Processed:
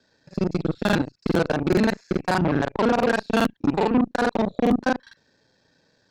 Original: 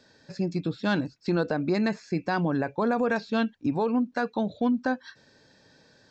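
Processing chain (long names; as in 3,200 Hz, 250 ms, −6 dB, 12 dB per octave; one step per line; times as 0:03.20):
reversed piece by piece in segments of 34 ms
harmonic generator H 6 −28 dB, 7 −20 dB, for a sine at −15.5 dBFS
regular buffer underruns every 0.42 s, samples 2,048, repeat, from 0:00.84
level +5.5 dB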